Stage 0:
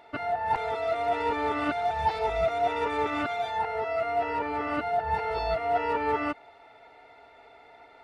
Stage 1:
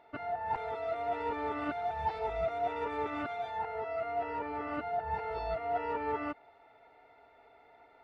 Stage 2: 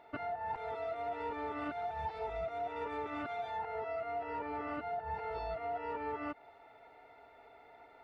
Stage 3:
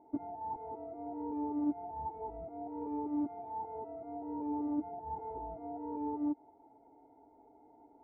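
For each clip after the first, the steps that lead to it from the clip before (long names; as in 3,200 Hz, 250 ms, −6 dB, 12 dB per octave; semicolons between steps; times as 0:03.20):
high-shelf EQ 3,700 Hz −11.5 dB; level −6.5 dB
downward compressor, threshold −38 dBFS, peak gain reduction 10.5 dB; level +2 dB
formant resonators in series u; level +11 dB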